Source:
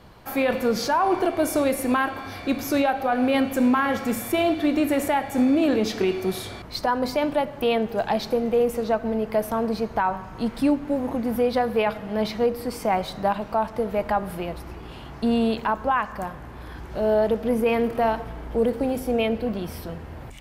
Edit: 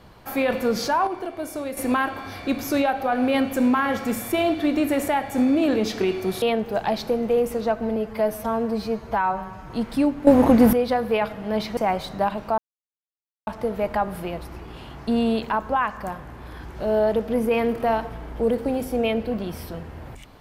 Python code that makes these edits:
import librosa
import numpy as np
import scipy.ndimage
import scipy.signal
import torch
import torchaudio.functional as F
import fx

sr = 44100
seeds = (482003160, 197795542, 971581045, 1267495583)

y = fx.edit(x, sr, fx.clip_gain(start_s=1.07, length_s=0.7, db=-8.5),
    fx.cut(start_s=6.42, length_s=1.23),
    fx.stretch_span(start_s=9.19, length_s=1.16, factor=1.5),
    fx.clip_gain(start_s=10.92, length_s=0.46, db=11.5),
    fx.cut(start_s=12.42, length_s=0.39),
    fx.insert_silence(at_s=13.62, length_s=0.89), tone=tone)